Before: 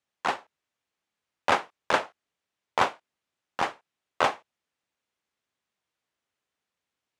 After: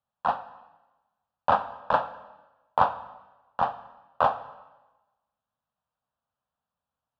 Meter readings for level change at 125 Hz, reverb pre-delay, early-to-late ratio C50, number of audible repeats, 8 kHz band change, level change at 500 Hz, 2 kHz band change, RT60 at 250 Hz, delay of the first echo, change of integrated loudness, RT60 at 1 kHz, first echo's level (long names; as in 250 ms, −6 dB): +3.5 dB, 5 ms, 14.0 dB, no echo audible, below −20 dB, +0.5 dB, −6.0 dB, 1.1 s, no echo audible, +1.0 dB, 1.1 s, no echo audible